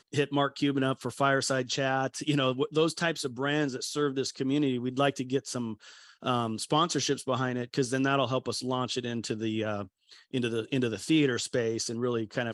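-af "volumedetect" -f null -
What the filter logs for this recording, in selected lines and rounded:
mean_volume: -29.5 dB
max_volume: -11.9 dB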